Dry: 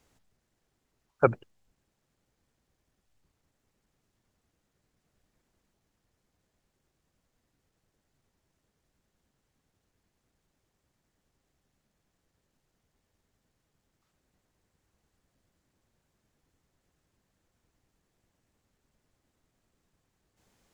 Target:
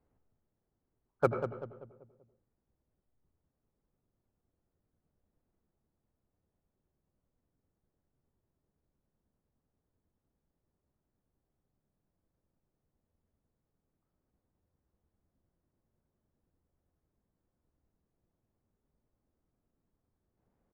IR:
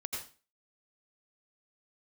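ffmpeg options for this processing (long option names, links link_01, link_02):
-filter_complex "[0:a]asplit=2[link_01][link_02];[link_02]adelay=193,lowpass=frequency=1300:poles=1,volume=-8dB,asplit=2[link_03][link_04];[link_04]adelay=193,lowpass=frequency=1300:poles=1,volume=0.45,asplit=2[link_05][link_06];[link_06]adelay=193,lowpass=frequency=1300:poles=1,volume=0.45,asplit=2[link_07][link_08];[link_08]adelay=193,lowpass=frequency=1300:poles=1,volume=0.45,asplit=2[link_09][link_10];[link_10]adelay=193,lowpass=frequency=1300:poles=1,volume=0.45[link_11];[link_01][link_03][link_05][link_07][link_09][link_11]amix=inputs=6:normalize=0,adynamicsmooth=sensitivity=8:basefreq=1300,asplit=2[link_12][link_13];[1:a]atrim=start_sample=2205,lowpass=2100[link_14];[link_13][link_14]afir=irnorm=-1:irlink=0,volume=-5dB[link_15];[link_12][link_15]amix=inputs=2:normalize=0,volume=-8.5dB"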